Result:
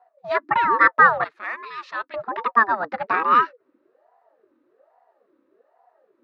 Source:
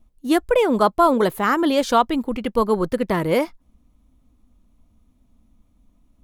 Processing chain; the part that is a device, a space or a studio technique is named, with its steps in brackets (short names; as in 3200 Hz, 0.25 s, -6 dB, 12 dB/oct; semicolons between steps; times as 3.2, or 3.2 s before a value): 1.24–2.14 passive tone stack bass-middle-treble 5-5-5; voice changer toy (ring modulator with a swept carrier 510 Hz, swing 45%, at 1.2 Hz; speaker cabinet 450–3800 Hz, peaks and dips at 490 Hz -3 dB, 740 Hz -4 dB, 1200 Hz +9 dB, 1800 Hz +8 dB, 3200 Hz -9 dB); gain +1.5 dB